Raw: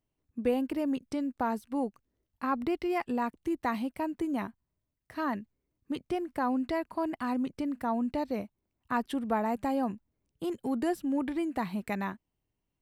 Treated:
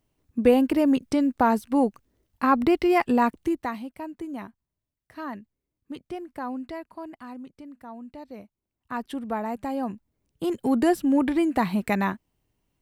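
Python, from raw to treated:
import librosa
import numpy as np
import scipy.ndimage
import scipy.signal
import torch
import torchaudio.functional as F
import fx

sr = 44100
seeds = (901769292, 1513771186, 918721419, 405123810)

y = fx.gain(x, sr, db=fx.line((3.38, 10.0), (3.79, -3.0), (6.5, -3.0), (7.59, -10.5), (8.11, -10.5), (9.11, 0.0), (9.68, 0.0), (10.74, 9.0)))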